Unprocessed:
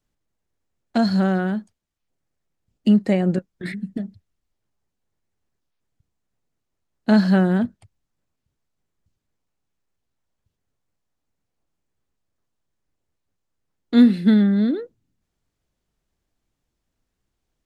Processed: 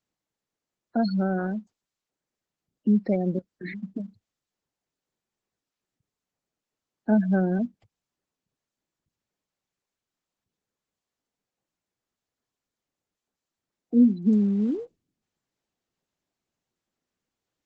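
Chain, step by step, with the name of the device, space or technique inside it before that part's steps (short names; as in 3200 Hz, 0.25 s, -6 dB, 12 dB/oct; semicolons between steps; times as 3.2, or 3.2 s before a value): 1.2–2.96 dynamic EQ 3000 Hz, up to -5 dB, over -52 dBFS, Q 6; noise-suppressed video call (HPF 170 Hz 12 dB/oct; spectral gate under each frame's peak -20 dB strong; gain -4 dB; Opus 12 kbps 48000 Hz)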